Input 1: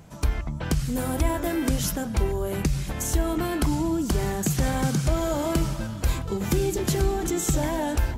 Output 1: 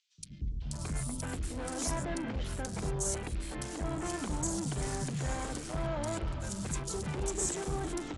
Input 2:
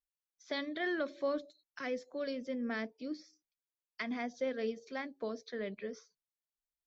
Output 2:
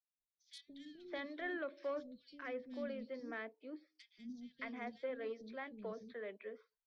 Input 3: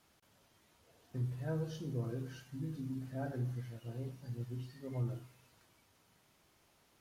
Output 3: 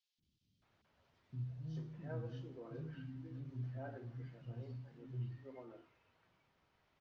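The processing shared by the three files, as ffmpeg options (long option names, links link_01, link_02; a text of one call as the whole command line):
ffmpeg -i in.wav -filter_complex "[0:a]acrossover=split=140|970|4200[link_01][link_02][link_03][link_04];[link_04]acrusher=bits=6:mix=0:aa=0.000001[link_05];[link_01][link_02][link_03][link_05]amix=inputs=4:normalize=0,asoftclip=type=tanh:threshold=-26dB,crystalizer=i=1:c=0,acrossover=split=270|3600[link_06][link_07][link_08];[link_06]adelay=180[link_09];[link_07]adelay=620[link_10];[link_09][link_10][link_08]amix=inputs=3:normalize=0,aresample=22050,aresample=44100,volume=-4.5dB" out.wav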